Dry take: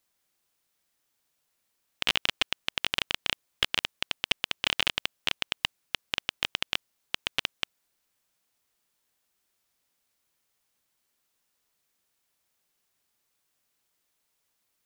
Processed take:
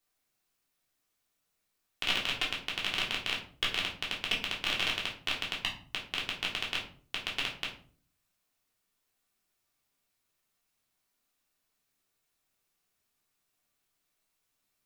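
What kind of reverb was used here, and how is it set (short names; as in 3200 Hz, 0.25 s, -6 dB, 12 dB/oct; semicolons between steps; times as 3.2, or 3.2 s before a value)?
shoebox room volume 370 m³, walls furnished, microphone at 3.4 m; gain -8 dB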